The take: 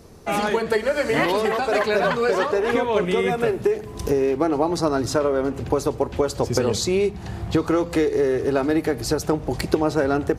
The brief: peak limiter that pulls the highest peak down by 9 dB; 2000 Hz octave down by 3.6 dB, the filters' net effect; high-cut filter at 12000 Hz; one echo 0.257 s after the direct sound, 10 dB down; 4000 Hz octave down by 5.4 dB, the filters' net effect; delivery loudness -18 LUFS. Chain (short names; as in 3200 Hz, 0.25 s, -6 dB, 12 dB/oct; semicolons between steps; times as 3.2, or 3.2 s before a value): LPF 12000 Hz; bell 2000 Hz -3.5 dB; bell 4000 Hz -6 dB; limiter -14 dBFS; echo 0.257 s -10 dB; gain +5.5 dB